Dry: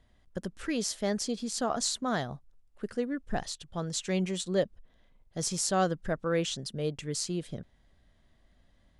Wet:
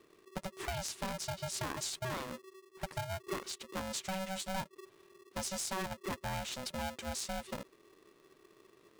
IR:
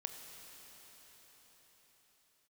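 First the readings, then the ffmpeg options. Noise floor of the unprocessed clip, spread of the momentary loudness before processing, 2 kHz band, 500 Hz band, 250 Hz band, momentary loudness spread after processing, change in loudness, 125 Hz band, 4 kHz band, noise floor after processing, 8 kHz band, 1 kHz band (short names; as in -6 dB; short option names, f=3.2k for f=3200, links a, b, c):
-66 dBFS, 12 LU, -3.0 dB, -10.0 dB, -11.5 dB, 9 LU, -7.5 dB, -7.0 dB, -5.5 dB, -66 dBFS, -6.0 dB, -4.5 dB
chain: -af "acompressor=threshold=-36dB:ratio=5,aeval=exprs='val(0)*sgn(sin(2*PI*380*n/s))':c=same"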